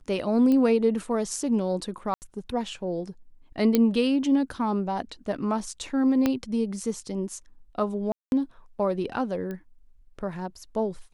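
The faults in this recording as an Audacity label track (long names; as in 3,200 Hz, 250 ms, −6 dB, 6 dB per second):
0.520000	0.520000	click −16 dBFS
2.140000	2.220000	drop-out 79 ms
3.750000	3.750000	click −8 dBFS
6.260000	6.260000	click −10 dBFS
8.120000	8.320000	drop-out 201 ms
9.510000	9.510000	click −23 dBFS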